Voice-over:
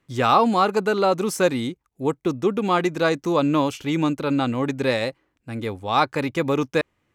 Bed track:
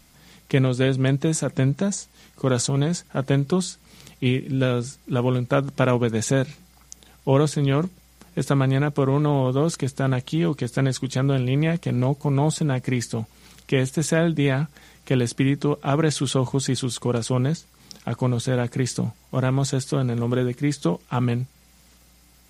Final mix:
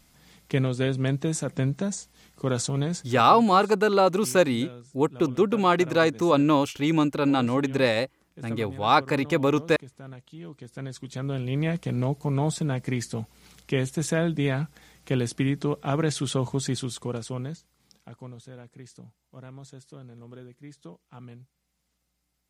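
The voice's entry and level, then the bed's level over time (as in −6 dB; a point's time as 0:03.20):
2.95 s, −0.5 dB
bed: 0:03.06 −5 dB
0:03.27 −20.5 dB
0:10.36 −20.5 dB
0:11.66 −4.5 dB
0:16.72 −4.5 dB
0:18.56 −22.5 dB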